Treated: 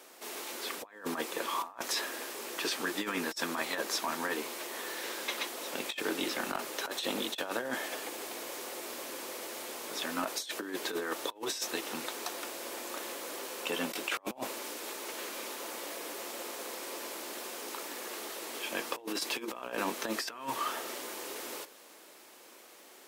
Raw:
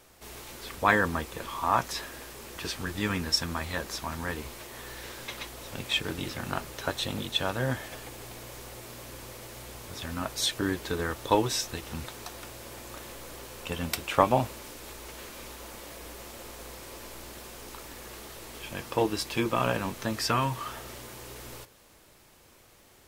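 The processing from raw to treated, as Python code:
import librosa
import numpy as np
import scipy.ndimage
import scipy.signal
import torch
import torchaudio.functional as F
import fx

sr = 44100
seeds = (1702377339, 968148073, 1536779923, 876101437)

y = scipy.signal.sosfilt(scipy.signal.butter(4, 270.0, 'highpass', fs=sr, output='sos'), x)
y = fx.over_compress(y, sr, threshold_db=-34.0, ratio=-0.5)
y = 10.0 ** (-17.5 / 20.0) * np.tanh(y / 10.0 ** (-17.5 / 20.0))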